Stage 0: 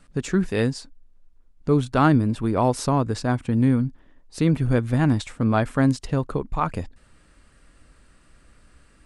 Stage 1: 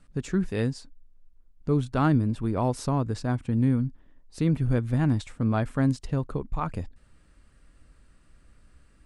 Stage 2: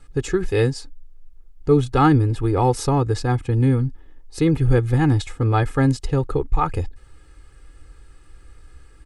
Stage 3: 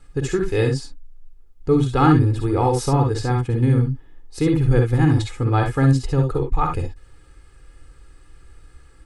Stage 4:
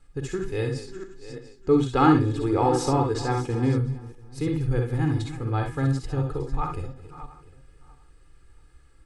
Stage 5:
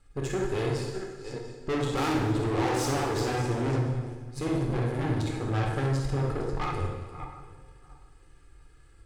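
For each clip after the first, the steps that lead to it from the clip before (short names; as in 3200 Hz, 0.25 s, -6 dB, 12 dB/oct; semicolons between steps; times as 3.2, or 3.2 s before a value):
low shelf 220 Hz +6.5 dB; gain -7.5 dB
comb 2.4 ms, depth 88%; gain +6.5 dB
reverb, pre-delay 45 ms, DRR 3.5 dB; gain -1.5 dB
regenerating reverse delay 0.346 s, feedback 40%, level -13 dB; de-hum 243.6 Hz, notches 36; spectral gain 0.88–3.78, 230–8500 Hz +6 dB; gain -8 dB
tube stage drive 31 dB, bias 0.8; plate-style reverb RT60 1.3 s, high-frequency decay 0.9×, DRR 1 dB; gain +3.5 dB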